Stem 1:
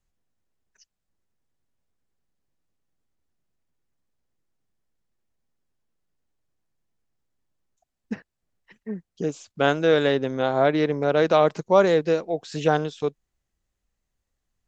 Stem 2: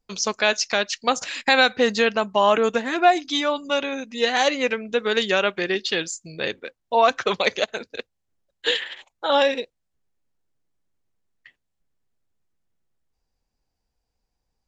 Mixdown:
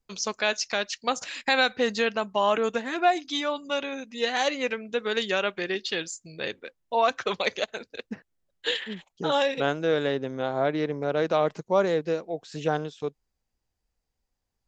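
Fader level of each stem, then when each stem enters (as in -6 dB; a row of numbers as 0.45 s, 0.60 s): -5.5 dB, -5.5 dB; 0.00 s, 0.00 s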